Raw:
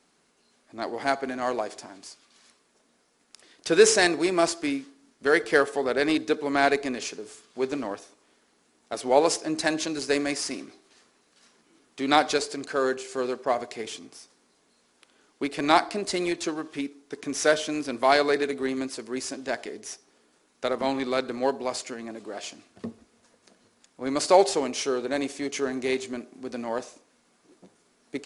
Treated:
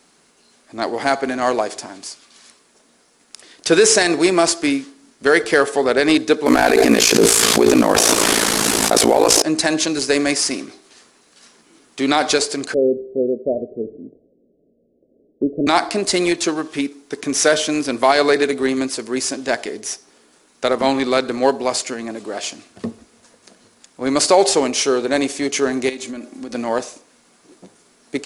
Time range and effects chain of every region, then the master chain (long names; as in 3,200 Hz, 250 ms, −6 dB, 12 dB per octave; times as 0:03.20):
0:06.46–0:09.42: variable-slope delta modulation 64 kbit/s + ring modulation 28 Hz + envelope flattener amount 100%
0:12.74–0:15.67: Butterworth low-pass 610 Hz 72 dB per octave + dynamic equaliser 220 Hz, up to +3 dB, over −48 dBFS, Q 2.6
0:25.89–0:26.55: comb filter 3.6 ms, depth 54% + downward compressor 10 to 1, threshold −35 dBFS
whole clip: high-shelf EQ 5,200 Hz +4.5 dB; boost into a limiter +11 dB; level −1.5 dB